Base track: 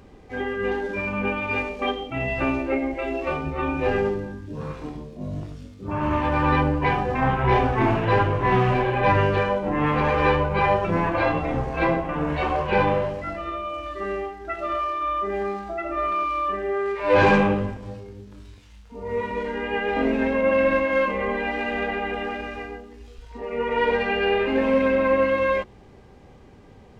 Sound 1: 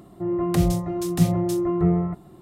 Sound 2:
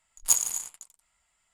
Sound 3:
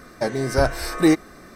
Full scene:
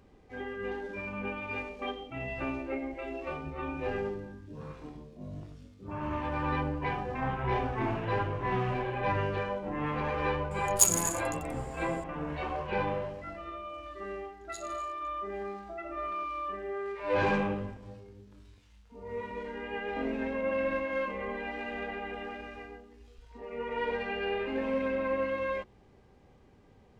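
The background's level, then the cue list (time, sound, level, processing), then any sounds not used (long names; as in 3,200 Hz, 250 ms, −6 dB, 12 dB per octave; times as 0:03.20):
base track −11 dB
0:10.51: mix in 2 −0.5 dB + upward compression, threshold −40 dBFS
0:14.24: mix in 2 −12 dB + four-pole ladder band-pass 4,100 Hz, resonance 85%
not used: 1, 3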